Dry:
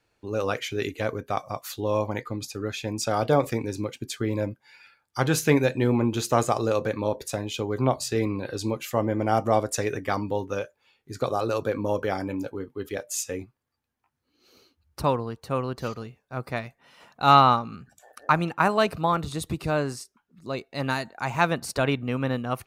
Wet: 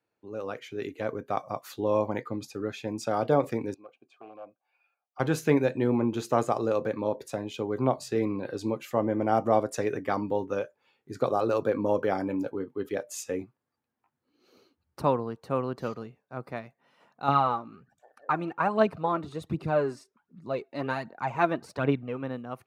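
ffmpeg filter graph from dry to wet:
ffmpeg -i in.wav -filter_complex "[0:a]asettb=1/sr,asplit=3[link_01][link_02][link_03];[link_01]atrim=end=3.744[link_04];[link_02]atrim=start=3.74:end=5.2,asetpts=PTS-STARTPTS,afade=type=in:duration=0.004:curve=qsin,afade=type=out:start_time=1.456:duration=0.004:curve=qsin,aeval=exprs='0.106*(abs(mod(val(0)/0.106+3,4)-2)-1)':channel_layout=same,asplit=3[link_05][link_06][link_07];[link_05]bandpass=frequency=730:width_type=q:width=8,volume=0dB[link_08];[link_06]bandpass=frequency=1090:width_type=q:width=8,volume=-6dB[link_09];[link_07]bandpass=frequency=2440:width_type=q:width=8,volume=-9dB[link_10];[link_08][link_09][link_10]amix=inputs=3:normalize=0[link_11];[link_03]atrim=start=5.196[link_12];[link_04][link_11]acrossfade=duration=0.004:curve1=hsin:curve2=qsin[link_13];[link_13][link_12]acrossfade=duration=0.004:curve1=qsin:curve2=hsin,asettb=1/sr,asplit=3[link_14][link_15][link_16];[link_14]atrim=end=17.284[link_17];[link_15]atrim=start=17.28:end=22.23,asetpts=PTS-STARTPTS,afade=type=in:duration=0.004:curve=qsin,afade=type=out:start_time=4.946:duration=0.004:curve=qsin,lowpass=frequency=3900:poles=1,aphaser=in_gain=1:out_gain=1:delay=3.5:decay=0.53:speed=1.3:type=triangular[link_18];[link_16]atrim=start=22.226[link_19];[link_17][link_18]acrossfade=duration=0.004:curve1=hsin:curve2=qsin[link_20];[link_20][link_19]acrossfade=duration=0.004:curve1=qsin:curve2=hsin,highpass=150,highshelf=frequency=2200:gain=-11,dynaudnorm=framelen=300:gausssize=7:maxgain=10dB,volume=-8dB" out.wav

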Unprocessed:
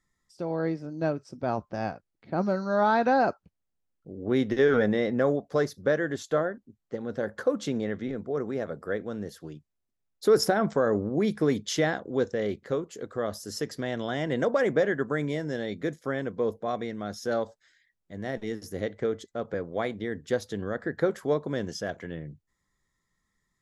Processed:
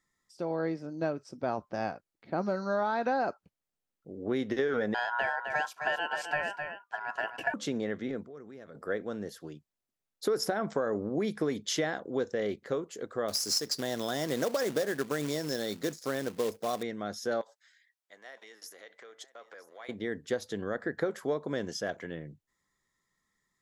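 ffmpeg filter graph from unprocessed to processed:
ffmpeg -i in.wav -filter_complex "[0:a]asettb=1/sr,asplit=3[link_01][link_02][link_03];[link_01]atrim=end=4.944[link_04];[link_02]atrim=start=4.94:end=7.54,asetpts=PTS-STARTPTS,afade=type=in:duration=0.004:curve=qsin,afade=type=out:start_time=2.596:duration=0.004:curve=qsin,bandreject=frequency=890:width=14,aeval=exprs='val(0)*sin(2*PI*1200*n/s)':channel_layout=same,aecho=1:1:259:0.335,atrim=end_sample=114660[link_05];[link_03]atrim=start=7.536[link_06];[link_04][link_05]acrossfade=duration=0.004:curve1=hsin:curve2=qsin[link_07];[link_07][link_06]acrossfade=duration=0.004:curve1=qsin:curve2=hsin,asettb=1/sr,asplit=3[link_08][link_09][link_10];[link_08]atrim=end=8.234[link_11];[link_09]atrim=start=8.23:end=8.75,asetpts=PTS-STARTPTS,afade=type=in:duration=0.004:curve=qsin,afade=type=out:start_time=0.516:duration=0.004:curve=qsin,equalizer=frequency=700:width_type=o:width=1.9:gain=-6.5,acompressor=threshold=-47dB:ratio=2.5:attack=3.2:release=140:knee=1:detection=peak[link_12];[link_10]atrim=start=8.746[link_13];[link_11][link_12]acrossfade=duration=0.004:curve1=hsin:curve2=qsin[link_14];[link_14][link_13]acrossfade=duration=0.004:curve1=qsin:curve2=hsin,asettb=1/sr,asplit=3[link_15][link_16][link_17];[link_15]atrim=end=13.284[link_18];[link_16]atrim=start=13.28:end=16.83,asetpts=PTS-STARTPTS,afade=type=in:duration=0.004:curve=qsin,afade=type=out:start_time=3.546:duration=0.004:curve=qsin,highshelf=frequency=3600:width_type=q:width=3:gain=9,acrusher=bits=3:mode=log:mix=0:aa=0.000001[link_19];[link_17]atrim=start=16.826[link_20];[link_18][link_19]acrossfade=duration=0.004:curve1=hsin:curve2=qsin[link_21];[link_21][link_20]acrossfade=duration=0.004:curve1=qsin:curve2=hsin,asettb=1/sr,asplit=3[link_22][link_23][link_24];[link_22]atrim=end=17.414[link_25];[link_23]atrim=start=17.41:end=19.89,asetpts=PTS-STARTPTS,afade=type=in:duration=0.004:curve=qsin,afade=type=out:start_time=2.476:duration=0.004:curve=qsin,acompressor=threshold=-36dB:ratio=5:attack=3.2:release=140:knee=1:detection=peak,highpass=870,aecho=1:1:965:0.141,atrim=end_sample=109368[link_26];[link_24]atrim=start=19.886[link_27];[link_25][link_26]acrossfade=duration=0.004:curve1=hsin:curve2=qsin[link_28];[link_28][link_27]acrossfade=duration=0.004:curve1=qsin:curve2=hsin,lowshelf=frequency=140:gain=-11.5,acompressor=threshold=-26dB:ratio=6" out.wav

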